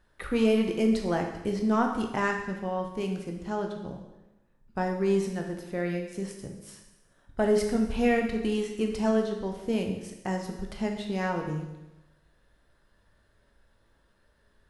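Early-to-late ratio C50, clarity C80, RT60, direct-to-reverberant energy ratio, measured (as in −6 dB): 5.5 dB, 8.0 dB, 1.0 s, 2.0 dB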